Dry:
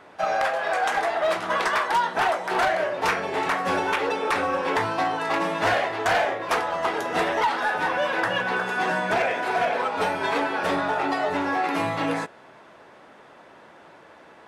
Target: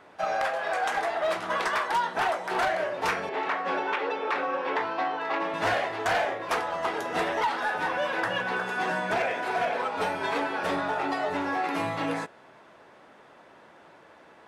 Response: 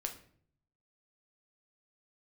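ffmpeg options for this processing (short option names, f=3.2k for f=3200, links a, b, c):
-filter_complex "[0:a]asettb=1/sr,asplit=3[a][b][c];[a]atrim=end=3.294[d];[b]atrim=start=3.29:end=5.54,asetpts=PTS-STARTPTS,afade=t=in:d=0.004:c=qsin,afade=t=out:st=2.246:d=0.004:c=qsin,highpass=280,lowpass=3.6k[e];[c]atrim=start=5.536[f];[d][e]acrossfade=d=0.004:c1=hsin:c2=qsin[g];[g][f]acrossfade=d=0.004:c1=qsin:c2=hsin,volume=-4dB"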